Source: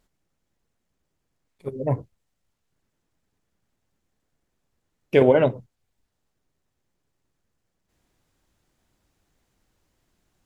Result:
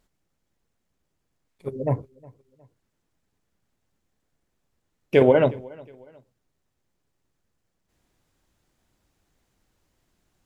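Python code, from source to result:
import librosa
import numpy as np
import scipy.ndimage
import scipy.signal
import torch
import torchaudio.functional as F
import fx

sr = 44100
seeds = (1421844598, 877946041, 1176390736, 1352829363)

y = fx.echo_feedback(x, sr, ms=362, feedback_pct=37, wet_db=-24)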